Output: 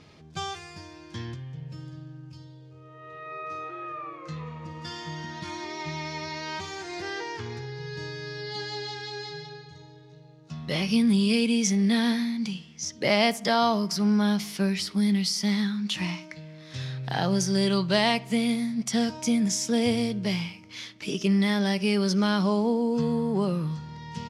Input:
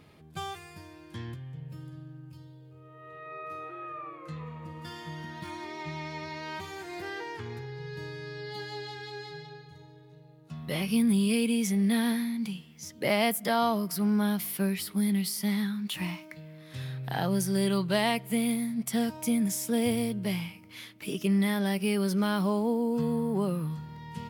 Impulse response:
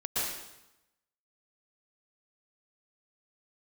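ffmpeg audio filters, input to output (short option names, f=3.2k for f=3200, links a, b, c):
-filter_complex "[0:a]lowpass=f=5.9k:t=q:w=2.7,asplit=2[a][b];[b]adelay=63,lowpass=f=2.8k:p=1,volume=-20dB,asplit=2[c][d];[d]adelay=63,lowpass=f=2.8k:p=1,volume=0.49,asplit=2[e][f];[f]adelay=63,lowpass=f=2.8k:p=1,volume=0.49,asplit=2[g][h];[h]adelay=63,lowpass=f=2.8k:p=1,volume=0.49[i];[a][c][e][g][i]amix=inputs=5:normalize=0,volume=3dB"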